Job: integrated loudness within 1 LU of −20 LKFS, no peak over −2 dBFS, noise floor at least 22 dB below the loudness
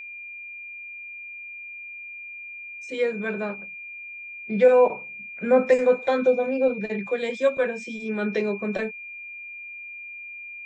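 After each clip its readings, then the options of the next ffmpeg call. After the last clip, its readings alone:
interfering tone 2,400 Hz; level of the tone −36 dBFS; integrated loudness −23.5 LKFS; sample peak −7.0 dBFS; target loudness −20.0 LKFS
→ -af "bandreject=frequency=2400:width=30"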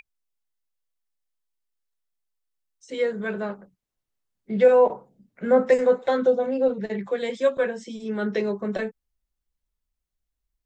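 interfering tone none found; integrated loudness −23.0 LKFS; sample peak −7.0 dBFS; target loudness −20.0 LKFS
→ -af "volume=3dB"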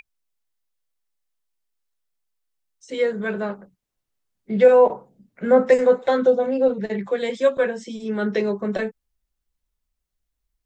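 integrated loudness −20.0 LKFS; sample peak −4.0 dBFS; background noise floor −81 dBFS

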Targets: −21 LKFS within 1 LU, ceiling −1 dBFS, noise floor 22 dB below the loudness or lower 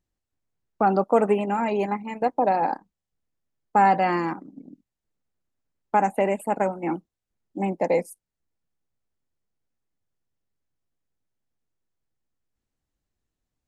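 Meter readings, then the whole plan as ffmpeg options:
integrated loudness −24.0 LKFS; sample peak −7.5 dBFS; target loudness −21.0 LKFS
→ -af "volume=3dB"

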